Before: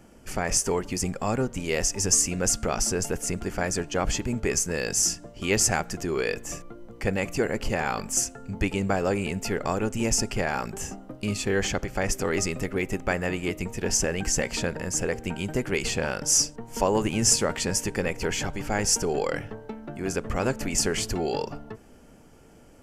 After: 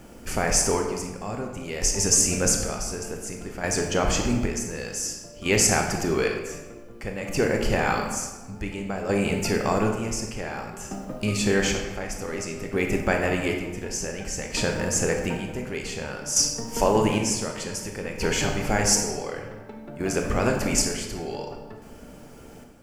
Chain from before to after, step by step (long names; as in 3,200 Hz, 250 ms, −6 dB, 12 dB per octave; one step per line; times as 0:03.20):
in parallel at −1 dB: downward compressor, threshold −34 dBFS, peak gain reduction 17 dB
on the sum: bit reduction 10 bits
square-wave tremolo 0.55 Hz, depth 65%, duty 45%
convolution reverb RT60 1.2 s, pre-delay 21 ms, DRR 2 dB